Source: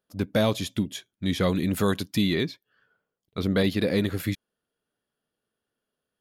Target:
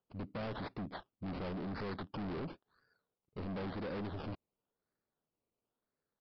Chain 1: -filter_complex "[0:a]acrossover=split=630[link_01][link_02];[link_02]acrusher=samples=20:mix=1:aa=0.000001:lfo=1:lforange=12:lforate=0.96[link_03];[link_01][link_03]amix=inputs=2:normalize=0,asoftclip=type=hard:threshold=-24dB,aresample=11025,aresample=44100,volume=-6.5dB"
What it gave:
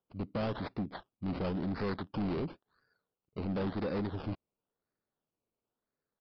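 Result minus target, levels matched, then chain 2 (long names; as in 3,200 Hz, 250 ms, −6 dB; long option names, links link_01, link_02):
hard clipping: distortion −5 dB
-filter_complex "[0:a]acrossover=split=630[link_01][link_02];[link_02]acrusher=samples=20:mix=1:aa=0.000001:lfo=1:lforange=12:lforate=0.96[link_03];[link_01][link_03]amix=inputs=2:normalize=0,asoftclip=type=hard:threshold=-32dB,aresample=11025,aresample=44100,volume=-6.5dB"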